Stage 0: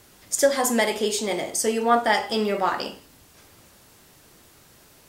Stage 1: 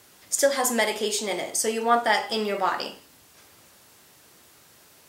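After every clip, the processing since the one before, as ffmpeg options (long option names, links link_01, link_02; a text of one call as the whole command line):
ffmpeg -i in.wav -af "highpass=65,lowshelf=frequency=390:gain=-6.5" out.wav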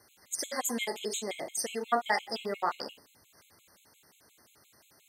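ffmpeg -i in.wav -af "afftfilt=real='re*gt(sin(2*PI*5.7*pts/sr)*(1-2*mod(floor(b*sr/1024/2100),2)),0)':imag='im*gt(sin(2*PI*5.7*pts/sr)*(1-2*mod(floor(b*sr/1024/2100),2)),0)':win_size=1024:overlap=0.75,volume=-5.5dB" out.wav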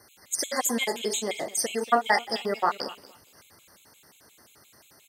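ffmpeg -i in.wav -af "aecho=1:1:234|468:0.112|0.0191,volume=6dB" out.wav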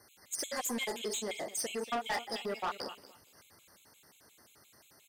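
ffmpeg -i in.wav -af "asoftclip=type=tanh:threshold=-24dB,volume=-5.5dB" out.wav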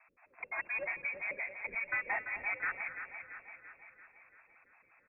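ffmpeg -i in.wav -filter_complex "[0:a]asplit=2[link_01][link_02];[link_02]aecho=0:1:339|678|1017|1356|1695|2034|2373:0.355|0.202|0.115|0.0657|0.0375|0.0213|0.0122[link_03];[link_01][link_03]amix=inputs=2:normalize=0,lowpass=frequency=2300:width_type=q:width=0.5098,lowpass=frequency=2300:width_type=q:width=0.6013,lowpass=frequency=2300:width_type=q:width=0.9,lowpass=frequency=2300:width_type=q:width=2.563,afreqshift=-2700" -ar 22050 -c:a libmp3lame -b:a 48k out.mp3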